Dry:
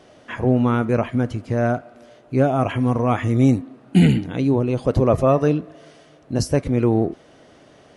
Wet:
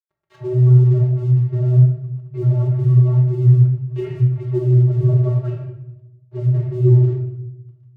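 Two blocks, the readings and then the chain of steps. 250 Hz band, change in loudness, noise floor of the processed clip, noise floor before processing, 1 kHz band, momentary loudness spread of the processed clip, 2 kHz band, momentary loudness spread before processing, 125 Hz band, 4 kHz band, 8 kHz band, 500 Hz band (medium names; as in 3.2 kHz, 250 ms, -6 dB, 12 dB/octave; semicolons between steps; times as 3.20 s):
no reading, +4.0 dB, -53 dBFS, -50 dBFS, under -15 dB, 15 LU, under -15 dB, 8 LU, +9.5 dB, under -15 dB, under -20 dB, -5.5 dB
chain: bass shelf 490 Hz +8.5 dB; vocoder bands 32, square 125 Hz; dynamic bell 1.9 kHz, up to +6 dB, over -48 dBFS, Q 1.1; in parallel at +0.5 dB: compression, threshold -25 dBFS, peak gain reduction 19.5 dB; on the sum: flange 0.93 Hz, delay 0.8 ms, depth 9.3 ms, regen +72%; low-pass that closes with the level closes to 820 Hz, closed at -15.5 dBFS; crossover distortion -44 dBFS; simulated room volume 280 m³, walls mixed, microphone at 1.1 m; trim -2 dB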